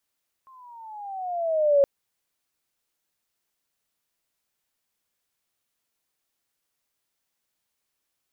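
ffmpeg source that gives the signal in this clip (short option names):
-f lavfi -i "aevalsrc='pow(10,(-13.5+34.5*(t/1.37-1))/20)*sin(2*PI*1070*1.37/(-11.5*log(2)/12)*(exp(-11.5*log(2)/12*t/1.37)-1))':d=1.37:s=44100"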